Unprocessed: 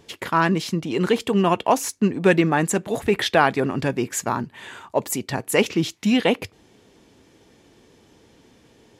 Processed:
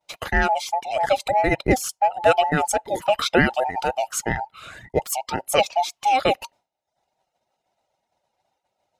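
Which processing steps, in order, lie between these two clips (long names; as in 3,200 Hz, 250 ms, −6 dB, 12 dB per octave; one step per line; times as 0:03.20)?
frequency inversion band by band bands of 1,000 Hz
downward expander −41 dBFS
reverb reduction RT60 0.6 s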